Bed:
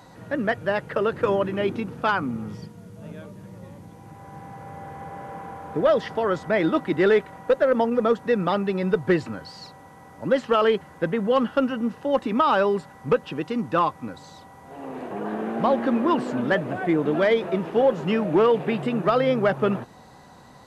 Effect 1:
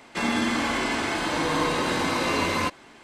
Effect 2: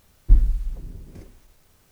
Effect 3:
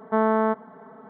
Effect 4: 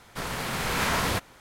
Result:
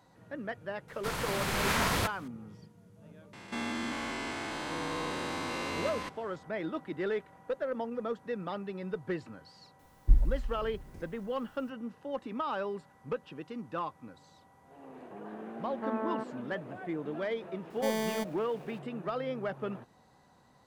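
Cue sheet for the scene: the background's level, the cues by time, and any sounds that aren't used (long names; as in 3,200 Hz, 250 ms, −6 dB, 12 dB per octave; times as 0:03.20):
bed −14.5 dB
0:00.88: mix in 4 −3 dB
0:03.33: mix in 1 −9.5 dB + spectrum averaged block by block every 200 ms
0:09.79: mix in 2 −7.5 dB
0:15.70: mix in 3 −14 dB
0:17.70: mix in 3 −15.5 dB + each half-wave held at its own peak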